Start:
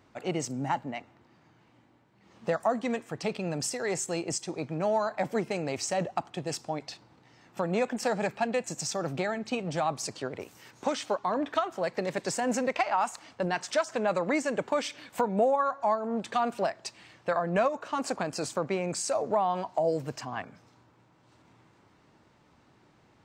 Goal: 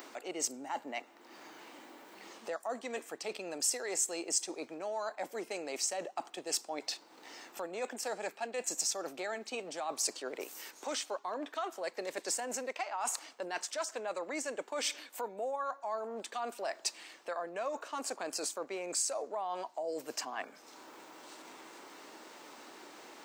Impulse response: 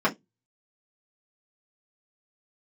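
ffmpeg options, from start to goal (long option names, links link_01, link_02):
-af "areverse,acompressor=threshold=-35dB:ratio=6,areverse,highpass=frequency=300:width=0.5412,highpass=frequency=300:width=1.3066,aemphasis=mode=production:type=50kf,acompressor=mode=upward:threshold=-40dB:ratio=2.5"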